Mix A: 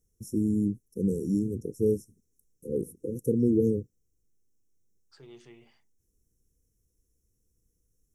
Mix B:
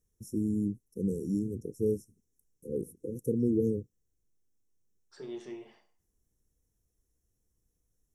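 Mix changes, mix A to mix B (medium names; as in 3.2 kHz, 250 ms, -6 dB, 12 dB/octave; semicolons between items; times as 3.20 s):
first voice -4.0 dB; reverb: on, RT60 0.45 s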